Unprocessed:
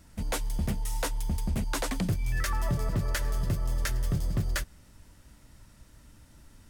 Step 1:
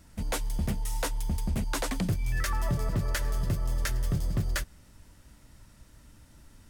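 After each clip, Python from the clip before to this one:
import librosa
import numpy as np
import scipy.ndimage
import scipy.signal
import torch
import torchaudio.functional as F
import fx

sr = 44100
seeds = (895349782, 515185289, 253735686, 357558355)

y = x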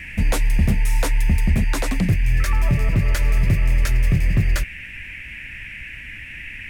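y = fx.rider(x, sr, range_db=10, speed_s=0.5)
y = fx.low_shelf(y, sr, hz=300.0, db=8.5)
y = fx.dmg_noise_band(y, sr, seeds[0], low_hz=1700.0, high_hz=2700.0, level_db=-40.0)
y = y * librosa.db_to_amplitude(4.0)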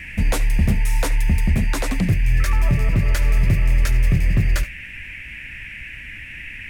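y = x + 10.0 ** (-18.0 / 20.0) * np.pad(x, (int(73 * sr / 1000.0), 0))[:len(x)]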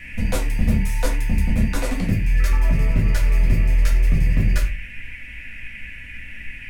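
y = fx.room_shoebox(x, sr, seeds[1], volume_m3=140.0, walls='furnished', distance_m=1.9)
y = y * librosa.db_to_amplitude(-6.0)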